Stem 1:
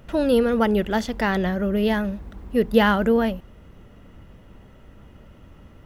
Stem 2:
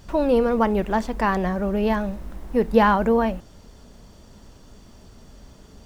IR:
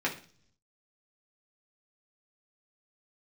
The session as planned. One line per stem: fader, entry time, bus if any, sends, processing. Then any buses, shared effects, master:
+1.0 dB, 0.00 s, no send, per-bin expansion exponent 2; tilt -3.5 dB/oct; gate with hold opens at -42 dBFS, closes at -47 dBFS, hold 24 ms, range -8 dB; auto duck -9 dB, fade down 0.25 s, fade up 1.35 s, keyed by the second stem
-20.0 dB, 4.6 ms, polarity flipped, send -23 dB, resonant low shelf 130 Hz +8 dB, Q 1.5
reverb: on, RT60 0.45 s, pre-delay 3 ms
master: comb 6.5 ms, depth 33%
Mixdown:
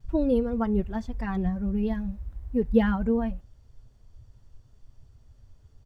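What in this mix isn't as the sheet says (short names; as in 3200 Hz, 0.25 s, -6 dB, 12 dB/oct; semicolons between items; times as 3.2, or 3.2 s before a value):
stem 2: polarity flipped; master: missing comb 6.5 ms, depth 33%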